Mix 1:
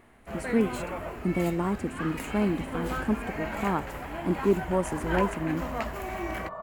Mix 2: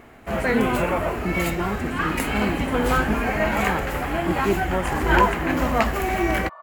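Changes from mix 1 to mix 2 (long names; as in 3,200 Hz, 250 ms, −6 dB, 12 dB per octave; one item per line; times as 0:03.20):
first sound +12.0 dB
second sound: add flat-topped band-pass 2,400 Hz, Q 0.5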